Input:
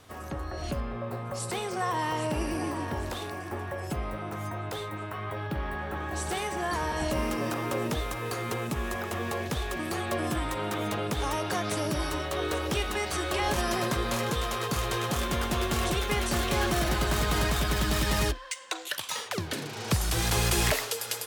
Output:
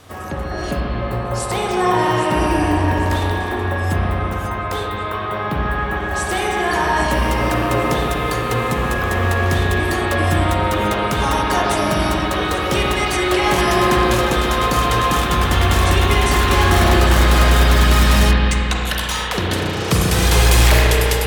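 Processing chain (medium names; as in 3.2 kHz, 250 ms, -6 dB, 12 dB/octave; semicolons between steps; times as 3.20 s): spring tank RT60 3.2 s, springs 33/44 ms, chirp 30 ms, DRR -3 dB; wavefolder -14 dBFS; trim +8.5 dB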